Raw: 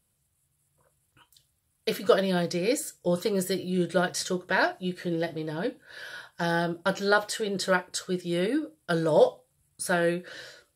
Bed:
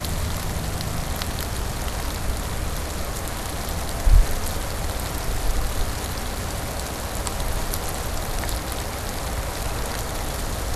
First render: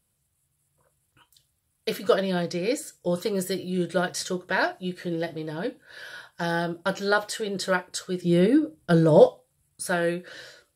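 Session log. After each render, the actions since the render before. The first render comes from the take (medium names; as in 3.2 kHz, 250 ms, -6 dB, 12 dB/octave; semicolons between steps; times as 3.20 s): 2.15–2.93 s: treble shelf 9.3 kHz -7.5 dB; 8.22–9.26 s: bass shelf 420 Hz +12 dB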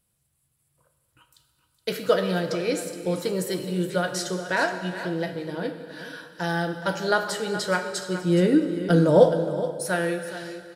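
delay 420 ms -12.5 dB; plate-style reverb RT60 2.1 s, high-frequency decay 0.8×, DRR 7 dB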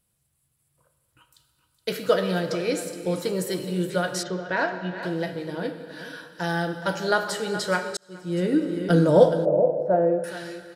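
4.23–5.03 s: distance through air 210 m; 7.97–8.76 s: fade in; 9.45–10.24 s: resonant low-pass 630 Hz, resonance Q 3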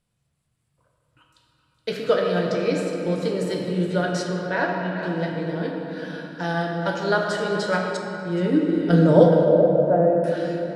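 distance through air 74 m; simulated room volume 190 m³, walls hard, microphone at 0.4 m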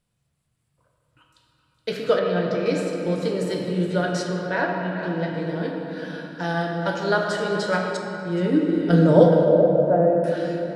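2.19–2.66 s: distance through air 130 m; 4.61–5.34 s: distance through air 71 m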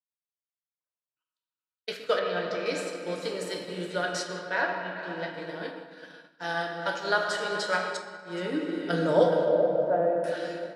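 expander -24 dBFS; high-pass 1 kHz 6 dB/octave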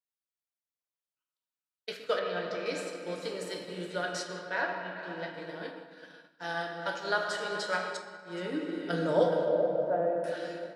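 trim -4 dB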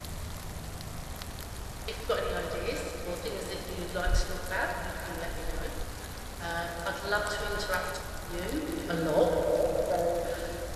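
add bed -13 dB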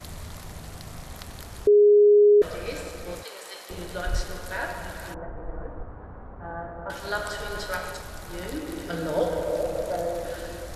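1.67–2.42 s: bleep 414 Hz -12 dBFS; 3.23–3.70 s: high-pass 700 Hz; 5.14–6.90 s: low-pass 1.3 kHz 24 dB/octave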